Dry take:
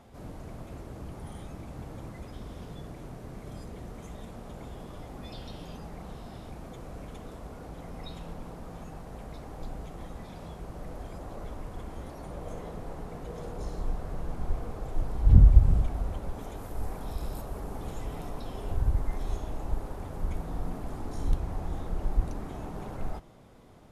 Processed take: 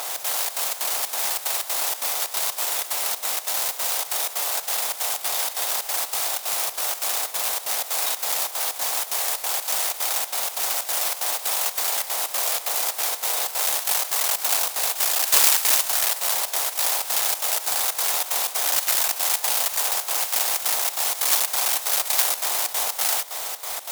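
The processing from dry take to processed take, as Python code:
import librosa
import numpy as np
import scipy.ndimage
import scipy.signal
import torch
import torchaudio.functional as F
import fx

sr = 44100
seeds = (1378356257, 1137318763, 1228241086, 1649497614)

y = fx.bin_compress(x, sr, power=0.4)
y = fx.mod_noise(y, sr, seeds[0], snr_db=14)
y = fx.step_gate(y, sr, bpm=186, pattern='xx.xxx.xx.x', floor_db=-12.0, edge_ms=4.5)
y = fx.fold_sine(y, sr, drive_db=12, ceiling_db=0.0)
y = scipy.signal.sosfilt(scipy.signal.butter(4, 720.0, 'highpass', fs=sr, output='sos'), y)
y = fx.tilt_shelf(y, sr, db=6.0, hz=1300.0)
y = fx.dmg_crackle(y, sr, seeds[1], per_s=47.0, level_db=-35.0)
y = fx.high_shelf(y, sr, hz=2600.0, db=11.5)
y = y * 10.0 ** (-8.0 / 20.0)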